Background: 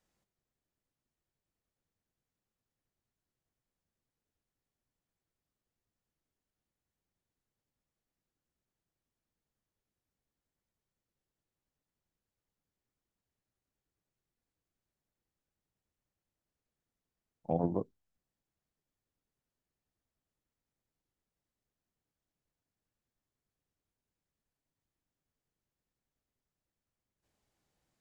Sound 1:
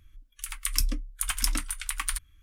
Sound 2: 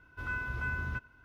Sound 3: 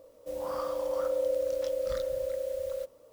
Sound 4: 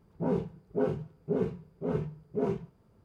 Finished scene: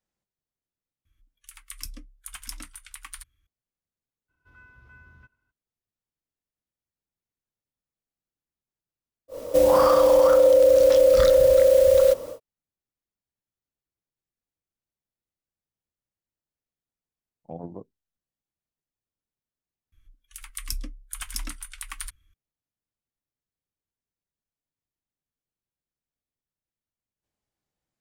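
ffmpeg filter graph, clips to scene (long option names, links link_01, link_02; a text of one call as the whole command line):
ffmpeg -i bed.wav -i cue0.wav -i cue1.wav -i cue2.wav -filter_complex "[1:a]asplit=2[link_01][link_02];[0:a]volume=-6.5dB[link_03];[link_01]highpass=frequency=40:poles=1[link_04];[3:a]alimiter=level_in=30dB:limit=-1dB:release=50:level=0:latency=1[link_05];[link_03]asplit=2[link_06][link_07];[link_06]atrim=end=19.924[link_08];[link_02]atrim=end=2.42,asetpts=PTS-STARTPTS,volume=-6dB[link_09];[link_07]atrim=start=22.336[link_10];[link_04]atrim=end=2.42,asetpts=PTS-STARTPTS,volume=-10.5dB,afade=type=in:duration=0.004:curve=hsin,afade=type=out:start_time=2.416:duration=0.004:curve=hsin,adelay=1050[link_11];[2:a]atrim=end=1.24,asetpts=PTS-STARTPTS,volume=-17.5dB,afade=type=in:duration=0.02,afade=type=out:start_time=1.22:duration=0.02,adelay=4280[link_12];[link_05]atrim=end=3.12,asetpts=PTS-STARTPTS,volume=-8.5dB,afade=type=in:duration=0.1,afade=type=out:start_time=3.02:duration=0.1,adelay=9280[link_13];[link_08][link_09]acrossfade=duration=0.004:curve1=hsin:curve2=hsin[link_14];[link_14][link_10]acrossfade=duration=0.004:curve1=hsin:curve2=hsin[link_15];[link_15][link_11][link_12][link_13]amix=inputs=4:normalize=0" out.wav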